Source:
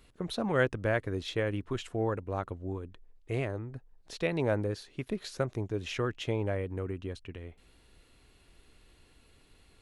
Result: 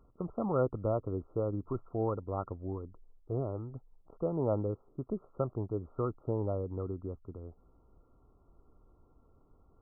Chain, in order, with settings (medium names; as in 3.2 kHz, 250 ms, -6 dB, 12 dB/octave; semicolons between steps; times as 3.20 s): brick-wall FIR low-pass 1.4 kHz; trim -1.5 dB